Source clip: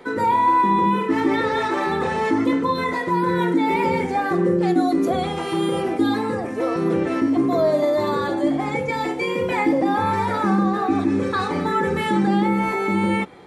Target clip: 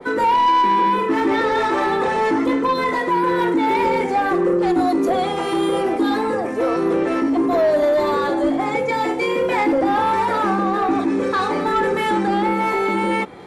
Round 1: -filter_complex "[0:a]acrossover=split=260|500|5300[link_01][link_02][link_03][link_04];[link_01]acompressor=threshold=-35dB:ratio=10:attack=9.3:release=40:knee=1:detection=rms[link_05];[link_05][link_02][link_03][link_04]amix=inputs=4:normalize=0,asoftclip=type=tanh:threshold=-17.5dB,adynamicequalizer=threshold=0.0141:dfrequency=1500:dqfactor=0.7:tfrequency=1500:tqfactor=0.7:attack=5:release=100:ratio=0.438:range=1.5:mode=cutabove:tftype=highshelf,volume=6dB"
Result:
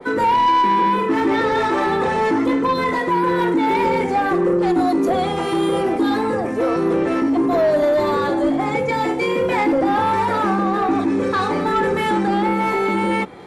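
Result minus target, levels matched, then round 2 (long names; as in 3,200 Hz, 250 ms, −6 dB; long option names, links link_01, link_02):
downward compressor: peak gain reduction −8 dB
-filter_complex "[0:a]acrossover=split=260|500|5300[link_01][link_02][link_03][link_04];[link_01]acompressor=threshold=-44dB:ratio=10:attack=9.3:release=40:knee=1:detection=rms[link_05];[link_05][link_02][link_03][link_04]amix=inputs=4:normalize=0,asoftclip=type=tanh:threshold=-17.5dB,adynamicequalizer=threshold=0.0141:dfrequency=1500:dqfactor=0.7:tfrequency=1500:tqfactor=0.7:attack=5:release=100:ratio=0.438:range=1.5:mode=cutabove:tftype=highshelf,volume=6dB"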